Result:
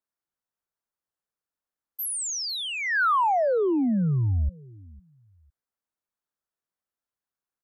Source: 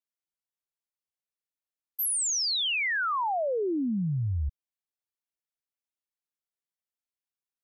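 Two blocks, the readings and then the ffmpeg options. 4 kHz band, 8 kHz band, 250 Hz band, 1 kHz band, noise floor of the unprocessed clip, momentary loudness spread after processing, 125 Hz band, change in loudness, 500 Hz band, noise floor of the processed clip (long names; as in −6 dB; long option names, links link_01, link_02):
−3.5 dB, −2.5 dB, +5.0 dB, +6.5 dB, below −85 dBFS, 8 LU, +5.0 dB, +2.5 dB, +5.5 dB, below −85 dBFS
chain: -af "highshelf=frequency=1900:width_type=q:width=1.5:gain=-7,aecho=1:1:504|1008:0.0708|0.017,volume=5dB"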